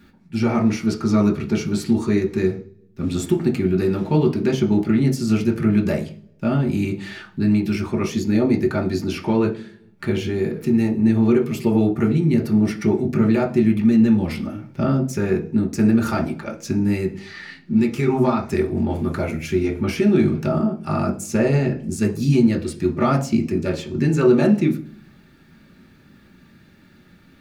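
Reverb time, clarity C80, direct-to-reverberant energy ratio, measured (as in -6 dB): 0.45 s, 18.5 dB, 0.5 dB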